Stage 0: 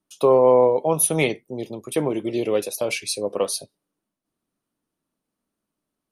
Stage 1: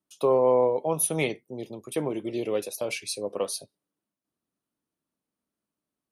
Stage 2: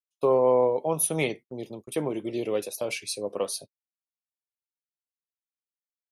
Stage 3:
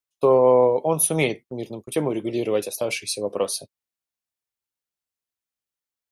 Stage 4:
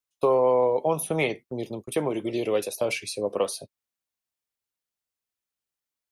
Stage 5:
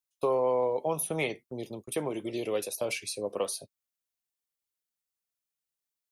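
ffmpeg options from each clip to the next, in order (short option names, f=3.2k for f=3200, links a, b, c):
-af "highpass=44,volume=-6dB"
-af "agate=range=-37dB:threshold=-41dB:ratio=16:detection=peak"
-af "equalizer=f=69:t=o:w=1.4:g=4,volume=5dB"
-filter_complex "[0:a]acrossover=split=470|2600[a][b][c];[a]acompressor=threshold=-28dB:ratio=4[d];[b]acompressor=threshold=-20dB:ratio=4[e];[c]acompressor=threshold=-34dB:ratio=4[f];[d][e][f]amix=inputs=3:normalize=0"
-af "highshelf=f=4.7k:g=6.5,volume=-6dB"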